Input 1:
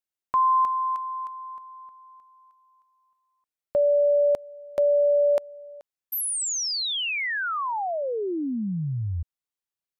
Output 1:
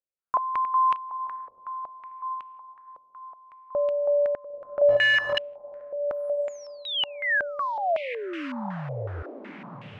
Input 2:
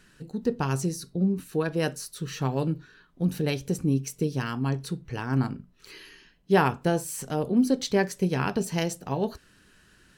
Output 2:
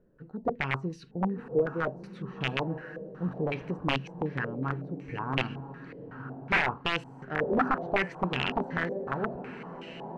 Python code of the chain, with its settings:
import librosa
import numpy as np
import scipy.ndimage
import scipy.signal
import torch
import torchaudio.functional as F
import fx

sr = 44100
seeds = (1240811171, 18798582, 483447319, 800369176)

y = fx.echo_diffused(x, sr, ms=1021, feedback_pct=42, wet_db=-10.0)
y = (np.mod(10.0 ** (15.5 / 20.0) * y + 1.0, 2.0) - 1.0) / 10.0 ** (15.5 / 20.0)
y = fx.filter_held_lowpass(y, sr, hz=5.4, low_hz=530.0, high_hz=2800.0)
y = y * 10.0 ** (-6.5 / 20.0)